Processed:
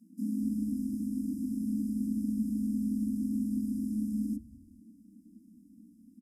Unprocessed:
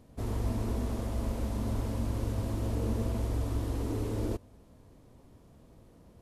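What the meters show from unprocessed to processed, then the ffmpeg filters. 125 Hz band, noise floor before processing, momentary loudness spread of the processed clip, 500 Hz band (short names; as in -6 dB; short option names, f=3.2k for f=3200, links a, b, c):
-10.5 dB, -58 dBFS, 3 LU, under -20 dB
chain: -filter_complex "[0:a]afftfilt=real='re*(1-between(b*sr/4096,150,5200))':imag='im*(1-between(b*sr/4096,150,5200))':win_size=4096:overlap=0.75,equalizer=f=100:t=o:w=0.67:g=7,equalizer=f=250:t=o:w=0.67:g=-10,equalizer=f=6.3k:t=o:w=0.67:g=-10,acrossover=split=120[a][b];[a]acompressor=threshold=-35dB:ratio=2[c];[c][b]amix=inputs=2:normalize=0,afreqshift=-320,asplit=4[d][e][f][g];[e]adelay=206,afreqshift=-150,volume=-24dB[h];[f]adelay=412,afreqshift=-300,volume=-30dB[i];[g]adelay=618,afreqshift=-450,volume=-36dB[j];[d][h][i][j]amix=inputs=4:normalize=0"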